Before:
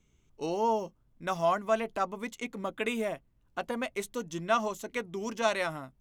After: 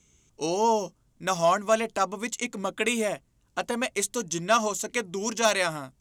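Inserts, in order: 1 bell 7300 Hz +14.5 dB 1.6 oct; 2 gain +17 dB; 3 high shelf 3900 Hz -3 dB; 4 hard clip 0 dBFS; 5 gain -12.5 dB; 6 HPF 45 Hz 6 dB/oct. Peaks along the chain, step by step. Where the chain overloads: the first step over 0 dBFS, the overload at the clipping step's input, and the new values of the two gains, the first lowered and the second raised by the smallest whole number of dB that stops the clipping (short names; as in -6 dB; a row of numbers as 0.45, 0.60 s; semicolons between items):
-9.0, +8.0, +6.5, 0.0, -12.5, -11.5 dBFS; step 2, 6.5 dB; step 2 +10 dB, step 5 -5.5 dB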